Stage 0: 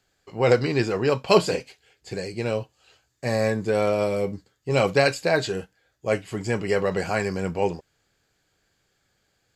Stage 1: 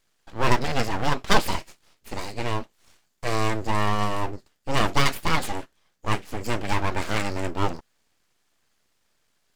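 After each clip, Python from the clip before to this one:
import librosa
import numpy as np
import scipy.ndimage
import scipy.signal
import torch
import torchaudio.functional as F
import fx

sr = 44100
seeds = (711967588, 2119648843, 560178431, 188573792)

y = np.abs(x)
y = F.gain(torch.from_numpy(y), 1.5).numpy()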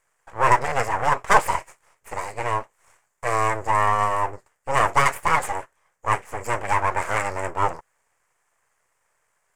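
y = fx.graphic_eq(x, sr, hz=(125, 250, 500, 1000, 2000, 4000, 8000), db=(4, -9, 8, 11, 10, -12, 12))
y = F.gain(torch.from_numpy(y), -5.5).numpy()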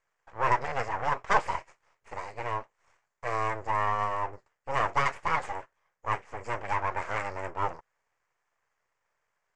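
y = scipy.signal.sosfilt(scipy.signal.butter(4, 6000.0, 'lowpass', fs=sr, output='sos'), x)
y = F.gain(torch.from_numpy(y), -8.0).numpy()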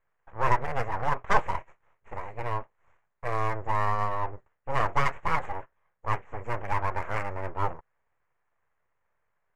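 y = fx.wiener(x, sr, points=9)
y = fx.low_shelf(y, sr, hz=190.0, db=8.5)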